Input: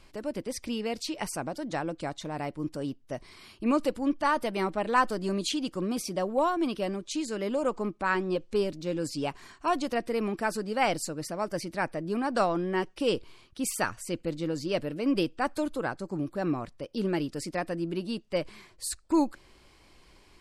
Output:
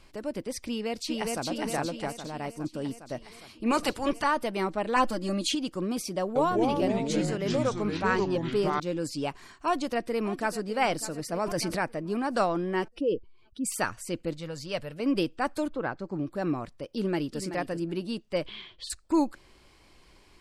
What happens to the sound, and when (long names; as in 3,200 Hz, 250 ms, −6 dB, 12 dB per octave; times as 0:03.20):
0:00.68–0:01.45: delay throw 410 ms, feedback 60%, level −1.5 dB
0:02.08–0:02.75: expander for the loud parts, over −42 dBFS
0:03.70–0:04.23: ceiling on every frequency bin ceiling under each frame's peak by 18 dB
0:04.96–0:05.55: comb filter 3.6 ms, depth 88%
0:06.20–0:08.80: delay with pitch and tempo change per echo 154 ms, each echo −4 semitones, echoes 3
0:09.52–0:10.60: delay throw 600 ms, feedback 50%, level −15 dB
0:11.32–0:11.79: envelope flattener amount 70%
0:12.88–0:13.72: expanding power law on the bin magnitudes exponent 1.8
0:14.33–0:15.00: parametric band 310 Hz −14 dB 0.86 octaves
0:15.67–0:16.31: low-pass filter 2,400 Hz → 5,500 Hz
0:16.92–0:17.41: delay throw 380 ms, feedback 15%, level −10 dB
0:18.46–0:18.90: low-pass with resonance 3,300 Hz, resonance Q 9.9